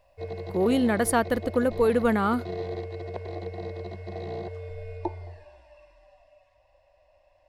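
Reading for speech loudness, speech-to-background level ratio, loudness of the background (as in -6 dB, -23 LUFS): -24.5 LUFS, 12.0 dB, -36.5 LUFS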